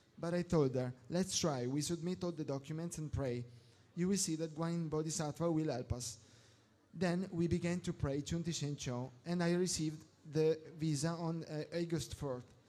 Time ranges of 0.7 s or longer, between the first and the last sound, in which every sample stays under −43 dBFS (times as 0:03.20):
0:06.13–0:06.96